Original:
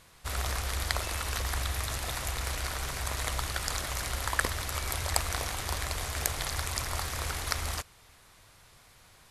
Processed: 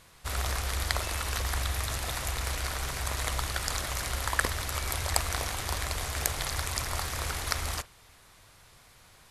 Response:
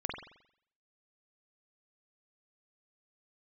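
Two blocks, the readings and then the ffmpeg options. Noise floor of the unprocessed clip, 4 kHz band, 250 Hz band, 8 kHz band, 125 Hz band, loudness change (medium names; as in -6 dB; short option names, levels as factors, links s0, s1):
-58 dBFS, +1.0 dB, +1.0 dB, +1.0 dB, +1.0 dB, +1.0 dB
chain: -filter_complex "[0:a]asplit=2[s0][s1];[1:a]atrim=start_sample=2205,atrim=end_sample=3528[s2];[s1][s2]afir=irnorm=-1:irlink=0,volume=0.133[s3];[s0][s3]amix=inputs=2:normalize=0"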